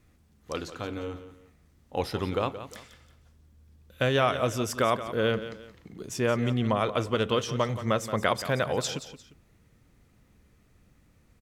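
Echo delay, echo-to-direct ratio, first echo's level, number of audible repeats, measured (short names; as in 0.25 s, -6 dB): 0.175 s, -12.0 dB, -12.5 dB, 2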